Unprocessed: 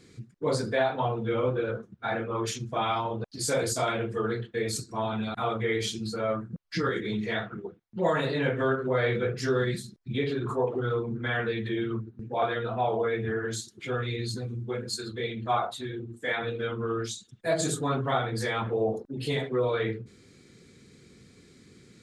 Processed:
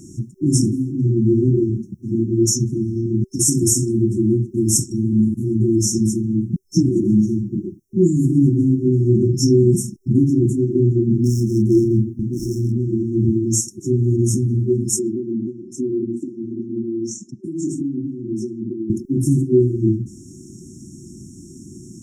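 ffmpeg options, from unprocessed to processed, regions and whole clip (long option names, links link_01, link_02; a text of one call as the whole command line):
ffmpeg -i in.wav -filter_complex "[0:a]asettb=1/sr,asplit=3[link_01][link_02][link_03];[link_01]atrim=end=11.124[link_04];[link_02]atrim=start=11.12:end=12.72,asetpts=PTS-STARTPTS,afade=type=in:duration=0.004:curve=qsin,afade=type=out:start_time=1.596:duration=0.004:curve=qsin,asoftclip=type=hard:threshold=-26.5dB,asplit=2[link_05][link_06];[link_06]adelay=33,volume=-6.5dB[link_07];[link_05][link_07]amix=inputs=2:normalize=0,atrim=end_sample=70560[link_08];[link_03]atrim=start=12.716[link_09];[link_04][link_08]acrossfade=duration=0.004:curve1=hsin:curve2=qsin[link_10];[link_10][link_09]acrossfade=duration=0.004:curve1=qsin:curve2=hsin,asettb=1/sr,asplit=3[link_11][link_12][link_13];[link_11]atrim=end=14.994[link_14];[link_12]atrim=start=14.99:end=18.9,asetpts=PTS-STARTPTS,afade=type=in:duration=0.004:curve=qsin,afade=type=out:start_time=3.906:duration=0.004:curve=qsin,equalizer=frequency=280:width=0.95:gain=10,acompressor=threshold=-34dB:ratio=16:attack=3.2:release=140:knee=1:detection=peak,highpass=170,lowpass=5100[link_15];[link_13]atrim=start=18.896[link_16];[link_14][link_15]acrossfade=duration=0.004:curve1=hsin:curve2=qsin[link_17];[link_17][link_16]acrossfade=duration=0.004:curve1=qsin:curve2=hsin,afftfilt=real='re*(1-between(b*sr/4096,380,5300))':imag='im*(1-between(b*sr/4096,380,5300))':win_size=4096:overlap=0.75,lowshelf=frequency=190:gain=-3.5,alimiter=level_in=22.5dB:limit=-1dB:release=50:level=0:latency=1,volume=-4dB" out.wav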